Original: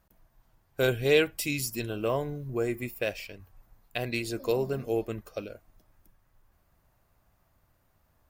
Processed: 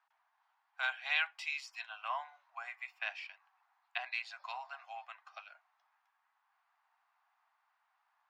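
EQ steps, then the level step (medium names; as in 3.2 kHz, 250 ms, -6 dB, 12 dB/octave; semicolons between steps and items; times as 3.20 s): steep high-pass 760 Hz 72 dB/octave; low-pass 3 kHz 6 dB/octave; distance through air 160 m; +1.0 dB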